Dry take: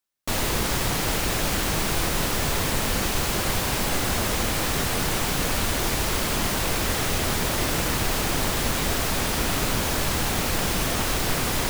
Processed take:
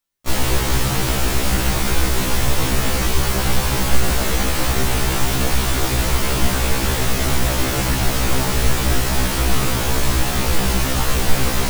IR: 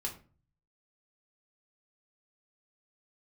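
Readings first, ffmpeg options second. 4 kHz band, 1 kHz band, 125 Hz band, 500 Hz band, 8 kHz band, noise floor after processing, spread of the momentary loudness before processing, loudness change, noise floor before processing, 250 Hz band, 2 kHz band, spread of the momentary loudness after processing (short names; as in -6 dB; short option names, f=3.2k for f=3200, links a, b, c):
+3.0 dB, +3.5 dB, +8.0 dB, +4.0 dB, +3.5 dB, -21 dBFS, 0 LU, +4.5 dB, -26 dBFS, +5.0 dB, +3.5 dB, 1 LU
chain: -filter_complex "[0:a]lowshelf=f=110:g=8.5,asplit=2[a][b];[1:a]atrim=start_sample=2205[c];[b][c]afir=irnorm=-1:irlink=0,volume=-19.5dB[d];[a][d]amix=inputs=2:normalize=0,afftfilt=real='re*1.73*eq(mod(b,3),0)':imag='im*1.73*eq(mod(b,3),0)':win_size=2048:overlap=0.75,volume=5dB"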